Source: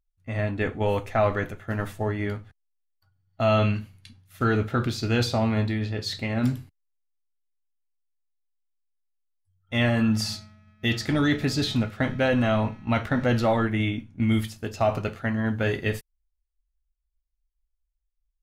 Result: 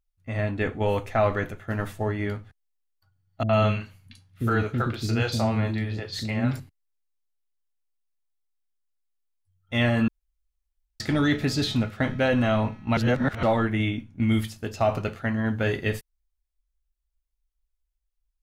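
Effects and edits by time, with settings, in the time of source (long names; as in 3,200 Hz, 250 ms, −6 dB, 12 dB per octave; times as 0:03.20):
0:03.43–0:06.60: three-band delay without the direct sound lows, mids, highs 60/100 ms, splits 360/4,400 Hz
0:10.08–0:11.00: fill with room tone
0:12.97–0:13.43: reverse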